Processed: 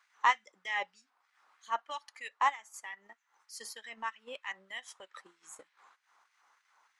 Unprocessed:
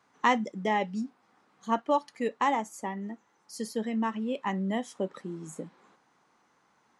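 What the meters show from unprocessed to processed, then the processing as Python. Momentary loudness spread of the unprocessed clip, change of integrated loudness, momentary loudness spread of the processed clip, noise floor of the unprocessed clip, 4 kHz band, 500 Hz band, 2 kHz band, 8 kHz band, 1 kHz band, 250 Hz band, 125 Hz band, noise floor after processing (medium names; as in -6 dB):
15 LU, -5.0 dB, 22 LU, -69 dBFS, -1.5 dB, -17.5 dB, -0.5 dB, -2.5 dB, -4.0 dB, -32.5 dB, under -35 dB, -77 dBFS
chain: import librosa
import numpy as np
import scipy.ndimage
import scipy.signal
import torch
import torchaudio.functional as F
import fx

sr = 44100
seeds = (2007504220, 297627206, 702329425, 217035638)

y = fx.filter_lfo_highpass(x, sr, shape='sine', hz=3.2, low_hz=890.0, high_hz=2100.0, q=1.4)
y = fx.transient(y, sr, attack_db=-5, sustain_db=-9)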